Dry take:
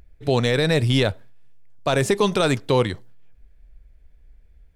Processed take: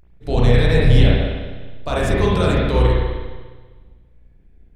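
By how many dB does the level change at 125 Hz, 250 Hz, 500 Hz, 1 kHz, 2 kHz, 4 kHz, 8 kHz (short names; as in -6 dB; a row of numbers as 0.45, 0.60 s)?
+7.0, +3.0, +1.0, +1.0, +1.0, -1.5, -6.0 dB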